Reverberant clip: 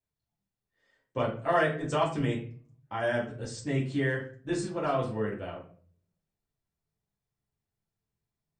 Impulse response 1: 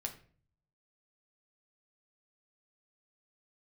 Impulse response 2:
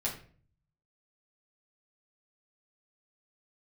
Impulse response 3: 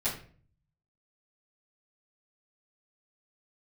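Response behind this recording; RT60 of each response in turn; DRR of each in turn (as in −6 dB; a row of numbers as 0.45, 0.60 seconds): 2; 0.45, 0.45, 0.45 seconds; 2.5, −6.0, −14.0 decibels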